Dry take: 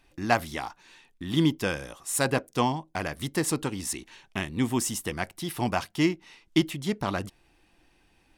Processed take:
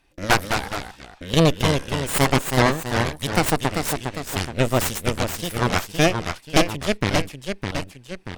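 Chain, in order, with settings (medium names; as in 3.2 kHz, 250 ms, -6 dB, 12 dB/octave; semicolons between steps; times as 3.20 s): Chebyshev shaper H 8 -6 dB, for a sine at -6.5 dBFS; ever faster or slower copies 191 ms, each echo -1 st, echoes 2, each echo -6 dB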